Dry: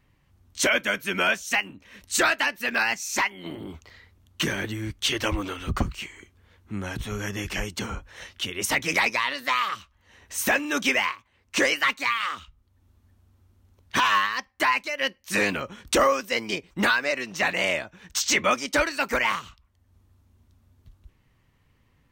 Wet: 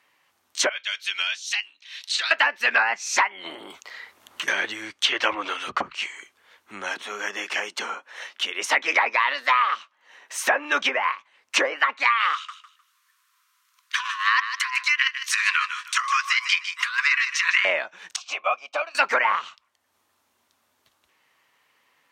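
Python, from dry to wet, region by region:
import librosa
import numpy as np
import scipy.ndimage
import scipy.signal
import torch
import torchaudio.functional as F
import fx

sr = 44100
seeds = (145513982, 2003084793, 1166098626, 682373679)

y = fx.chain(x, sr, fx.bandpass_q(hz=3900.0, q=2.8),
    fx.band_squash(depth_pct=100), at=(0.69, 2.31))
y = fx.chain(y, sr, fx.high_shelf(hz=11000.0, db=4.5),
    fx.band_squash(depth_pct=100), at=(3.7, 4.48))
y = fx.chain(y, sr, fx.highpass(hz=210.0, slope=24),
    fx.high_shelf(hz=3800.0, db=-9.0), at=(6.94, 10.72))
y = fx.chain(y, sr, fx.cheby1_highpass(hz=990.0, order=10),
    fx.over_compress(threshold_db=-28.0, ratio=-0.5),
    fx.echo_feedback(ms=153, feedback_pct=25, wet_db=-10.5), at=(12.33, 17.65))
y = fx.chain(y, sr, fx.transient(attack_db=6, sustain_db=-2),
    fx.vowel_filter(vowel='a'), at=(18.16, 18.95))
y = fx.env_lowpass_down(y, sr, base_hz=920.0, full_db=-18.0)
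y = scipy.signal.sosfilt(scipy.signal.butter(2, 720.0, 'highpass', fs=sr, output='sos'), y)
y = y * librosa.db_to_amplitude(7.5)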